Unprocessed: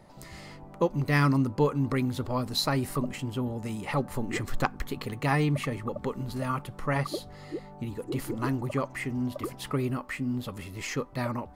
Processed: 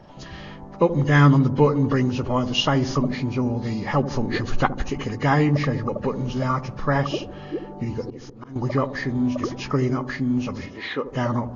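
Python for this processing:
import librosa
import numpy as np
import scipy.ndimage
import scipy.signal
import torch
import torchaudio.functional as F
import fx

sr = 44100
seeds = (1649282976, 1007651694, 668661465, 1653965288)

y = fx.freq_compress(x, sr, knee_hz=1400.0, ratio=1.5)
y = fx.auto_swell(y, sr, attack_ms=542.0, at=(7.84, 8.56))
y = fx.bandpass_edges(y, sr, low_hz=310.0, high_hz=3700.0, at=(10.66, 11.06))
y = fx.echo_wet_lowpass(y, sr, ms=76, feedback_pct=57, hz=560.0, wet_db=-9)
y = F.gain(torch.from_numpy(y), 7.0).numpy()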